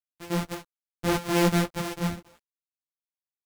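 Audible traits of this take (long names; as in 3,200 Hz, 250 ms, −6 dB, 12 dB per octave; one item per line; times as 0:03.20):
a buzz of ramps at a fixed pitch in blocks of 256 samples
tremolo triangle 0.68 Hz, depth 45%
a quantiser's noise floor 10 bits, dither none
a shimmering, thickened sound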